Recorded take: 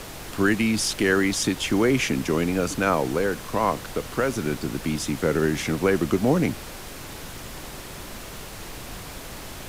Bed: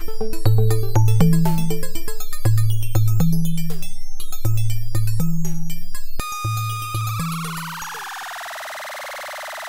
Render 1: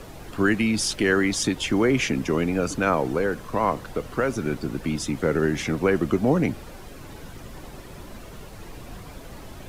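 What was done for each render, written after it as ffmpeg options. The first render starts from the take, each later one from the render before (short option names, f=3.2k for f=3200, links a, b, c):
-af "afftdn=nr=10:nf=-38"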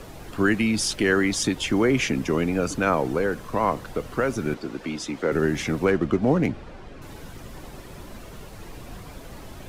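-filter_complex "[0:a]asettb=1/sr,asplit=3[a][b][c];[a]atrim=end=4.544[d];[b]atrim=start=4.54:end=5.32,asetpts=PTS-STARTPTS,afade=t=in:d=0.004:c=qsin,afade=t=out:st=0.776:d=0.004:c=qsin,acrossover=split=240 7100:gain=0.224 1 0.251[e][f][g];[e][f][g]amix=inputs=3:normalize=0[h];[c]atrim=start=5.316[i];[d][h]acrossfade=d=0.004:c1=hsin:c2=qsin[j];[j][i]acrossfade=d=0.004:c1=qsin:c2=hsin,asettb=1/sr,asplit=3[k][l][m];[k]atrim=end=5.854[n];[l]atrim=start=5.85:end=7.02,asetpts=PTS-STARTPTS,afade=t=in:d=0.004:c=qsin,afade=t=out:st=1.166:d=0.004:c=qsin,adynamicsmooth=sensitivity=7.5:basefreq=3.6k[o];[m]atrim=start=7.016[p];[n][o]acrossfade=d=0.004:c1=hsin:c2=qsin[q];[q][p]acrossfade=d=0.004:c1=qsin:c2=hsin"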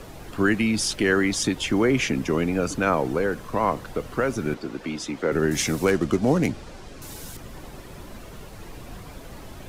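-filter_complex "[0:a]asettb=1/sr,asplit=3[a][b][c];[a]atrim=end=5.514[d];[b]atrim=start=5.51:end=7.37,asetpts=PTS-STARTPTS,afade=t=in:d=0.004:c=qsin,afade=t=out:st=1.856:d=0.004:c=qsin,bass=f=250:g=0,treble=f=4k:g=13[e];[c]atrim=start=7.366[f];[d][e]acrossfade=d=0.004:c1=hsin:c2=qsin[g];[g][f]acrossfade=d=0.004:c1=qsin:c2=hsin"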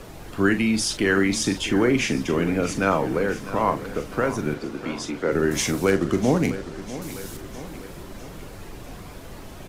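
-filter_complex "[0:a]asplit=2[a][b];[b]adelay=41,volume=-9.5dB[c];[a][c]amix=inputs=2:normalize=0,aecho=1:1:651|1302|1953|2604|3255|3906:0.188|0.107|0.0612|0.0349|0.0199|0.0113"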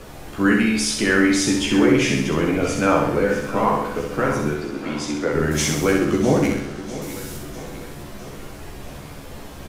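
-filter_complex "[0:a]asplit=2[a][b];[b]adelay=14,volume=-3.5dB[c];[a][c]amix=inputs=2:normalize=0,aecho=1:1:65|130|195|260|325|390|455:0.596|0.322|0.174|0.0938|0.0506|0.0274|0.0148"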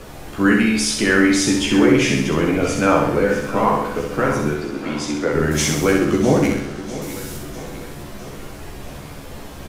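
-af "volume=2dB"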